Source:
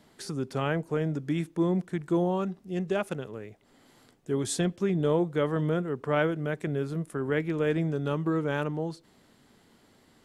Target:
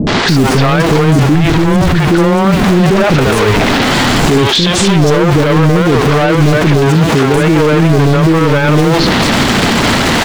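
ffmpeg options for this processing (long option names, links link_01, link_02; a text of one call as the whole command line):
ffmpeg -i in.wav -filter_complex "[0:a]aeval=exprs='val(0)+0.5*0.0188*sgn(val(0))':channel_layout=same,acrusher=bits=6:mix=0:aa=0.000001,asoftclip=type=tanh:threshold=-27dB,asettb=1/sr,asplit=3[link_01][link_02][link_03];[link_01]atrim=end=4.314[link_04];[link_02]atrim=start=4.31:end=4.89,asetpts=PTS-STARTPTS,afade=type=in:duration=0.004:curve=qsin,afade=type=out:start_time=0.576:duration=0.004:curve=qsin,equalizer=frequency=3400:width=1.2:gain=10[link_05];[link_03]atrim=start=4.886[link_06];[link_04][link_05]acrossfade=duration=0.004:curve1=hsin:curve2=qsin[link_07];[link_07][link_06]acrossfade=duration=0.004:curve1=qsin:curve2=hsin,dynaudnorm=framelen=290:gausssize=3:maxgain=11dB,asplit=3[link_08][link_09][link_10];[link_08]afade=type=out:start_time=1.34:duration=0.02[link_11];[link_09]lowshelf=frequency=150:width_type=q:width=1.5:gain=10,afade=type=in:start_time=1.34:duration=0.02,afade=type=out:start_time=1.99:duration=0.02[link_12];[link_10]afade=type=in:start_time=1.99:duration=0.02[link_13];[link_11][link_12][link_13]amix=inputs=3:normalize=0,asettb=1/sr,asplit=3[link_14][link_15][link_16];[link_14]atrim=end=6.864[link_17];[link_15]atrim=start=6.86:end=7.35,asetpts=PTS-STARTPTS,afade=type=in:duration=0.004:curve=qsin,afade=type=out:start_time=0.486:duration=0.004:curve=qsin,highpass=62[link_18];[link_16]atrim=start=7.346[link_19];[link_17][link_18]acrossfade=duration=0.004:curve1=hsin:curve2=qsin[link_20];[link_20][link_19]acrossfade=duration=0.004:curve1=qsin:curve2=hsin,acrossover=split=420|5300[link_21][link_22][link_23];[link_22]adelay=70[link_24];[link_23]adelay=290[link_25];[link_21][link_24][link_25]amix=inputs=3:normalize=0,acrossover=split=6600[link_26][link_27];[link_27]acompressor=threshold=-51dB:ratio=4:attack=1:release=60[link_28];[link_26][link_28]amix=inputs=2:normalize=0,alimiter=level_in=28.5dB:limit=-1dB:release=50:level=0:latency=1,volume=-1dB" out.wav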